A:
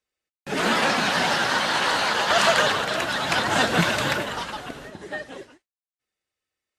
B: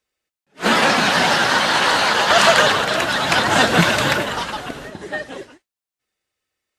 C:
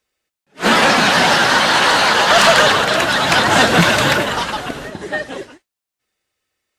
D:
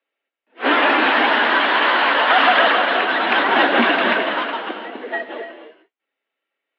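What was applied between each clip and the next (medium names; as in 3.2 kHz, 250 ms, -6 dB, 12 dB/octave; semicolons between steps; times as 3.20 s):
attacks held to a fixed rise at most 350 dB/s; trim +6 dB
saturation -8 dBFS, distortion -18 dB; trim +4.5 dB
gated-style reverb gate 320 ms rising, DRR 8 dB; mistuned SSB +66 Hz 170–3200 Hz; trim -3 dB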